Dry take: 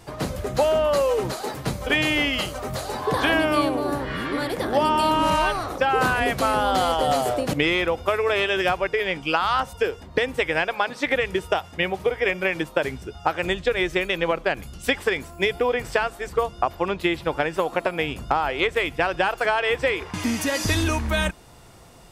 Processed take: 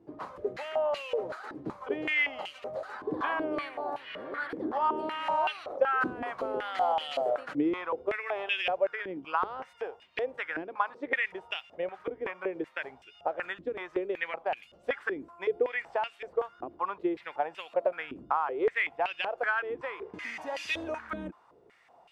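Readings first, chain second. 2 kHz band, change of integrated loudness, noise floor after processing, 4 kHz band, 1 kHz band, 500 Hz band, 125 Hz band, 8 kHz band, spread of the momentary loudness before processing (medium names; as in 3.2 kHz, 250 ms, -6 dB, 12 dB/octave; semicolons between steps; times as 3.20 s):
-9.0 dB, -9.5 dB, -60 dBFS, -13.5 dB, -8.5 dB, -9.0 dB, -22.5 dB, under -20 dB, 7 LU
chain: step-sequenced band-pass 5.3 Hz 310–2700 Hz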